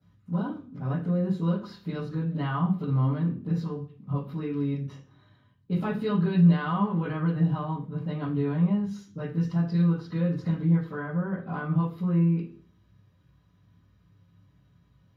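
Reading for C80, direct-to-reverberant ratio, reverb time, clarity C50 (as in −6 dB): 13.0 dB, −12.5 dB, 0.45 s, 8.0 dB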